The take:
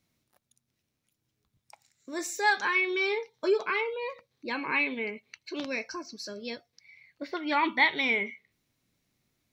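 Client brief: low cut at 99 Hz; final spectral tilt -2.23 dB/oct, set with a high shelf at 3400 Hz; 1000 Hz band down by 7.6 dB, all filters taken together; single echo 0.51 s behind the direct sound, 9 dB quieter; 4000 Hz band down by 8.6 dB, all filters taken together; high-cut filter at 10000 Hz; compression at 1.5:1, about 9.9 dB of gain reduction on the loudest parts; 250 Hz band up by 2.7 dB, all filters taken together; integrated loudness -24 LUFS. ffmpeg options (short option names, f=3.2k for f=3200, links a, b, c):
-af "highpass=99,lowpass=10k,equalizer=f=250:t=o:g=4.5,equalizer=f=1k:t=o:g=-8.5,highshelf=f=3.4k:g=-8.5,equalizer=f=4k:t=o:g=-4.5,acompressor=threshold=-49dB:ratio=1.5,aecho=1:1:510:0.355,volume=16dB"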